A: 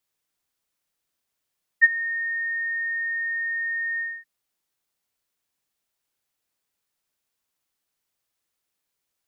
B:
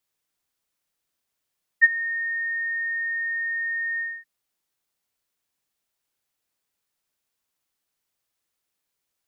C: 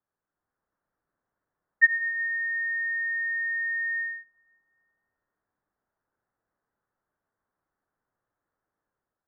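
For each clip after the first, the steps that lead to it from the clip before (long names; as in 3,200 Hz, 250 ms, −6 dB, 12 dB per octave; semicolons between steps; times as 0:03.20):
no processing that can be heard
Butterworth low-pass 1,700 Hz 48 dB per octave; automatic gain control gain up to 5.5 dB; convolution reverb RT60 1.4 s, pre-delay 5 ms, DRR 14 dB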